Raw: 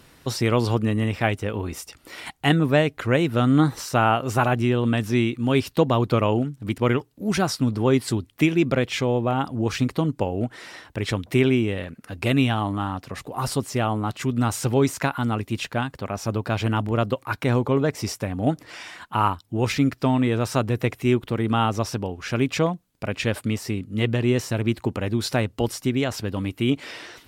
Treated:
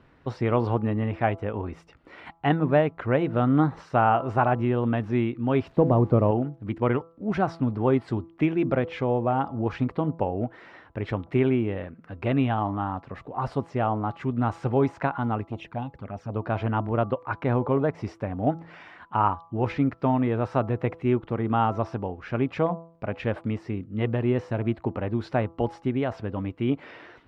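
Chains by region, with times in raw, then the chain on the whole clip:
5.69–6.31 switching spikes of -20 dBFS + de-esser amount 50% + tilt shelf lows +5.5 dB, about 880 Hz
15.45–16.36 high shelf 9700 Hz +5.5 dB + envelope flanger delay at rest 3.9 ms, full sweep at -23.5 dBFS + core saturation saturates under 440 Hz
whole clip: LPF 1800 Hz 12 dB/oct; de-hum 166.1 Hz, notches 8; dynamic EQ 770 Hz, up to +5 dB, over -37 dBFS, Q 1.4; gain -3.5 dB

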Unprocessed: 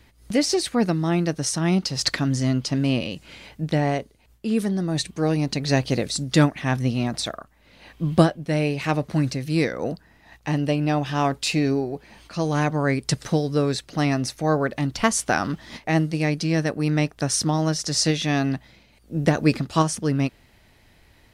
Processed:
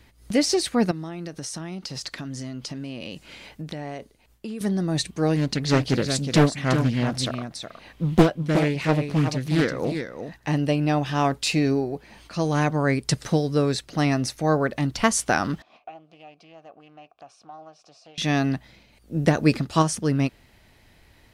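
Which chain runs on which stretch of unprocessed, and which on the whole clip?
0.91–4.61 bell 85 Hz -5.5 dB 1.8 oct + compressor 16:1, threshold -29 dBFS
5.36–10.48 echo 0.367 s -8 dB + Doppler distortion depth 0.75 ms
15.62–18.18 compressor 4:1, threshold -27 dBFS + vowel filter a + Doppler distortion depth 0.18 ms
whole clip: dry

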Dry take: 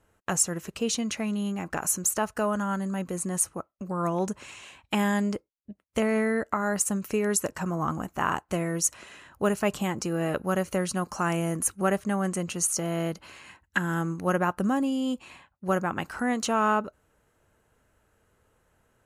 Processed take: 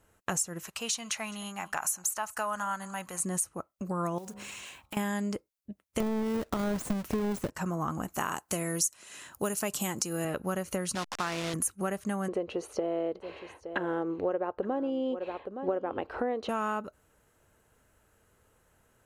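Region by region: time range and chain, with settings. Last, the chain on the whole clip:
0.63–3.2 resonant low shelf 590 Hz -11.5 dB, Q 1.5 + echo 0.209 s -21.5 dB
4.18–4.97 block floating point 5-bit + de-hum 67.72 Hz, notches 21 + compressor 5:1, threshold -39 dBFS
6–7.5 half-waves squared off + de-esser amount 50% + tilt -1.5 dB/oct
8.14–10.25 HPF 130 Hz 6 dB/oct + tone controls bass +1 dB, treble +10 dB
10.95–11.54 level-crossing sampler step -29.5 dBFS + LPF 4800 Hz + tilt +2.5 dB/oct
12.28–16.49 EQ curve 110 Hz 0 dB, 160 Hz -12 dB, 450 Hz +14 dB, 1400 Hz -4 dB, 3900 Hz -5 dB, 7200 Hz -29 dB + echo 0.868 s -16.5 dB
whole clip: high shelf 5400 Hz +6 dB; compressor, threshold -28 dBFS

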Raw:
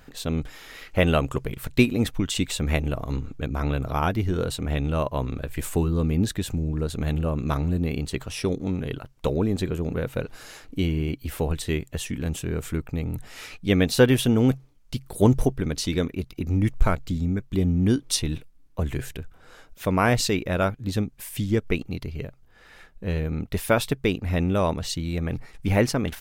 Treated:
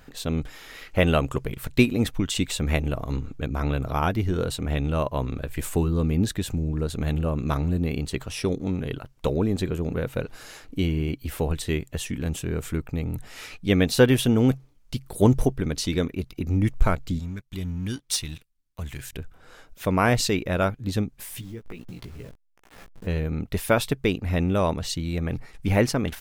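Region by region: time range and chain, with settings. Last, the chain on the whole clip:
17.19–19.13 passive tone stack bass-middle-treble 5-5-5 + sample leveller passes 2
21.2–23.07 level-crossing sampler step -42.5 dBFS + compressor 10:1, threshold -35 dBFS + doubler 17 ms -3.5 dB
whole clip: dry

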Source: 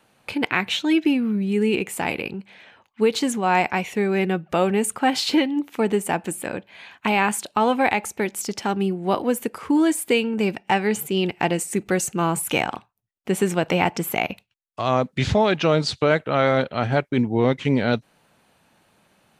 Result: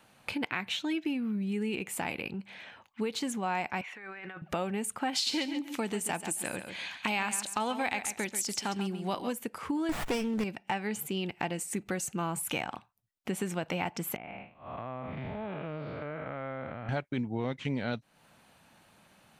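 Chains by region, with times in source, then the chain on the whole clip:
3.81–4.42 band-pass 1500 Hz, Q 1.7 + negative-ratio compressor -41 dBFS
5.13–9.33 bell 6300 Hz +9.5 dB 2.4 oct + feedback echo 0.137 s, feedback 18%, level -11.5 dB
9.89–10.44 high shelf 7100 Hz +6.5 dB + sample leveller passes 2 + running maximum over 9 samples
14.16–16.89 time blur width 0.239 s + LPF 2500 Hz 24 dB/oct + compressor 2.5:1, threshold -37 dBFS
whole clip: bell 410 Hz -4.5 dB 0.73 oct; compressor 2.5:1, threshold -35 dBFS

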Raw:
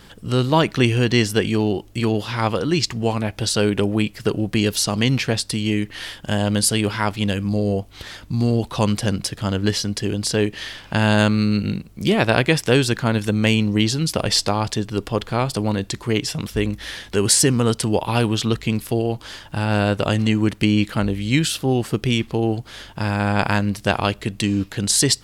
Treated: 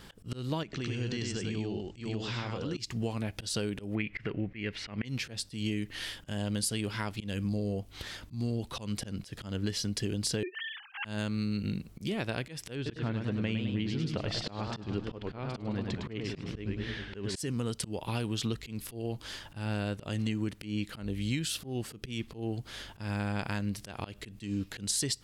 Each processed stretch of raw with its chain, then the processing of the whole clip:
0.63–2.77 steep low-pass 8000 Hz 72 dB/oct + compressor, threshold -25 dBFS + echo 0.1 s -3 dB
3.95–5.05 upward compressor, threshold -21 dBFS + synth low-pass 2100 Hz, resonance Q 5.3
10.43–11.05 sine-wave speech + HPF 660 Hz 6 dB/oct
12.75–17.36 LPF 2900 Hz + warbling echo 0.103 s, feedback 57%, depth 159 cents, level -7 dB
whole clip: compressor 8:1, threshold -22 dBFS; dynamic EQ 900 Hz, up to -5 dB, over -42 dBFS, Q 0.8; auto swell 0.137 s; gain -5.5 dB

